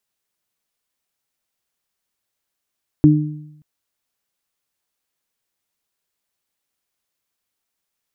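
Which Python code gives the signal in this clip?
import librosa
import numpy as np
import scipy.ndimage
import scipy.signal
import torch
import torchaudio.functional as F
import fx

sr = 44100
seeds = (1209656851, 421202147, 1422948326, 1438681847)

y = fx.additive(sr, length_s=0.58, hz=151.0, level_db=-9.0, upper_db=(3,), decay_s=0.9, upper_decays_s=(0.61,))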